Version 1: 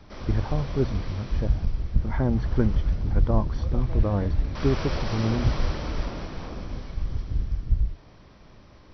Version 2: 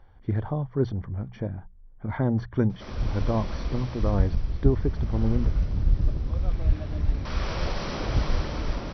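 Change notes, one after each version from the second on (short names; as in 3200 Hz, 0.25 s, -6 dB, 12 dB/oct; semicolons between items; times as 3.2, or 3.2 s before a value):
background: entry +2.70 s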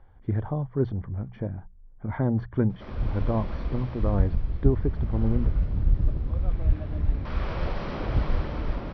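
master: add air absorption 300 m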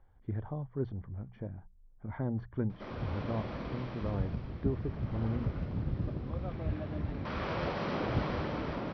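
speech -9.5 dB; background: add HPF 130 Hz 12 dB/oct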